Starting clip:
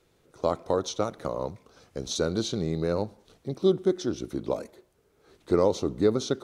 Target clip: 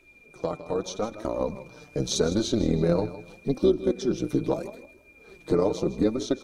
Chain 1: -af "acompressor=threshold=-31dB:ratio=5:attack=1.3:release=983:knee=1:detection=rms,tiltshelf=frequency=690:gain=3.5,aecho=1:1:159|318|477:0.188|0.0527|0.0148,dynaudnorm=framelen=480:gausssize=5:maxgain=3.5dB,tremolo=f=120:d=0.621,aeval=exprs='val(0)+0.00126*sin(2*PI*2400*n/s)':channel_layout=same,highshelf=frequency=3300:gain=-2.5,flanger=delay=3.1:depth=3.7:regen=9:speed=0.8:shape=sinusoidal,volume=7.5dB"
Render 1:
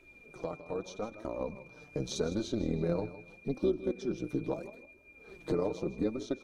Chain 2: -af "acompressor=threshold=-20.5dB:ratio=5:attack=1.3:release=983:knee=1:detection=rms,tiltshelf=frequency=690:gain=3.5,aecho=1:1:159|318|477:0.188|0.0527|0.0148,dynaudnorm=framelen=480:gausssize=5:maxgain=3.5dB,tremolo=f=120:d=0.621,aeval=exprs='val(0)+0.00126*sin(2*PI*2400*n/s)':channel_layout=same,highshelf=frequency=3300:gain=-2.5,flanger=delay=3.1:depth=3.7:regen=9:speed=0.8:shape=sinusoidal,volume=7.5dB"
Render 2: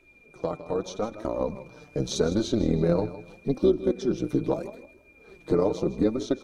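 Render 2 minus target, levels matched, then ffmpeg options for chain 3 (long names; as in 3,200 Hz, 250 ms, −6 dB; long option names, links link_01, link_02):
8,000 Hz band −4.5 dB
-af "acompressor=threshold=-20.5dB:ratio=5:attack=1.3:release=983:knee=1:detection=rms,tiltshelf=frequency=690:gain=3.5,aecho=1:1:159|318|477:0.188|0.0527|0.0148,dynaudnorm=framelen=480:gausssize=5:maxgain=3.5dB,tremolo=f=120:d=0.621,aeval=exprs='val(0)+0.00126*sin(2*PI*2400*n/s)':channel_layout=same,highshelf=frequency=3300:gain=3.5,flanger=delay=3.1:depth=3.7:regen=9:speed=0.8:shape=sinusoidal,volume=7.5dB"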